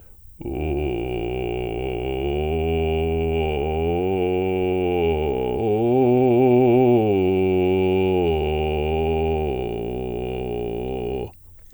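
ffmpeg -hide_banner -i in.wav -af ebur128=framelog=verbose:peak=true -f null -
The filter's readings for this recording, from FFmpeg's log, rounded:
Integrated loudness:
  I:         -21.5 LUFS
  Threshold: -31.7 LUFS
Loudness range:
  LRA:         6.3 LU
  Threshold: -40.9 LUFS
  LRA low:   -24.6 LUFS
  LRA high:  -18.3 LUFS
True peak:
  Peak:       -6.9 dBFS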